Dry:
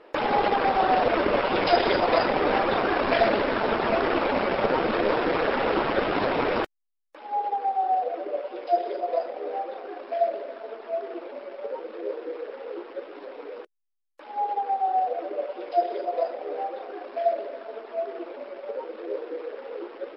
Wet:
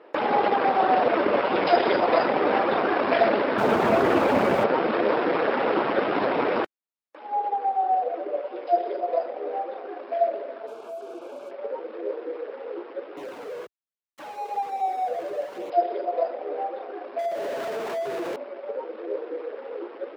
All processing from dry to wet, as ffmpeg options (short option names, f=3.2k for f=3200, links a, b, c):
-filter_complex "[0:a]asettb=1/sr,asplit=3[a][b][c];[a]atrim=end=3.584[d];[b]atrim=start=3.58:end=4.64,asetpts=PTS-STARTPTS,afade=t=in:d=0.004:c=qsin,afade=t=out:st=1.056:d=0.004:c=qsin,aeval=exprs='val(0)+0.5*0.0376*sgn(val(0))':c=same,equalizer=f=91:t=o:w=1.7:g=13[e];[c]atrim=start=4.636[f];[d][e]acrossfade=d=0.004:c1=hsin:c2=qsin[g];[g][f]acrossfade=d=0.004:c1=qsin:c2=hsin,asettb=1/sr,asplit=3[h][i][j];[h]atrim=end=10.674[k];[i]atrim=start=10.67:end=11.51,asetpts=PTS-STARTPTS,afade=t=in:d=0.004:c=qsin,afade=t=out:st=0.836:d=0.004:c=qsin,acompressor=threshold=-35dB:ratio=4:attack=3.2:release=140:knee=1:detection=peak,acrusher=bits=7:mix=0:aa=0.5,asuperstop=centerf=1900:order=4:qfactor=3.1[l];[j]atrim=start=11.506[m];[k][l]acrossfade=d=0.004:c1=hsin:c2=qsin[n];[n][m]acrossfade=d=0.004:c1=qsin:c2=hsin,asettb=1/sr,asplit=3[o][p][q];[o]atrim=end=13.174[r];[p]atrim=start=13.17:end=15.7,asetpts=PTS-STARTPTS,afade=t=in:d=0.004:c=qsin,afade=t=out:st=2.526:d=0.004:c=qsin,aeval=exprs='val(0)+0.5*0.0224*sgn(val(0))':c=same,highpass=48,flanger=delay=0.3:depth=1.6:regen=-38:speed=1.2:shape=sinusoidal[s];[q]atrim=start=15.696[t];[r][s]acrossfade=d=0.004:c1=hsin:c2=qsin[u];[u][t]acrossfade=d=0.004:c1=qsin:c2=hsin,asettb=1/sr,asplit=3[v][w][x];[v]atrim=end=17.194[y];[w]atrim=start=17.19:end=18.36,asetpts=PTS-STARTPTS,afade=t=in:d=0.004:c=qsin,afade=t=out:st=1.166:d=0.004:c=qsin,aeval=exprs='val(0)+0.5*0.0398*sgn(val(0))':c=same,acompressor=threshold=-28dB:ratio=3:attack=3.2:release=140:knee=1:detection=peak[z];[x]atrim=start=18.356[aa];[y][z]acrossfade=d=0.004:c1=hsin:c2=qsin[ab];[ab][aa]acrossfade=d=0.004:c1=qsin:c2=hsin,highpass=170,highshelf=f=3.8k:g=-10.5,volume=1.5dB"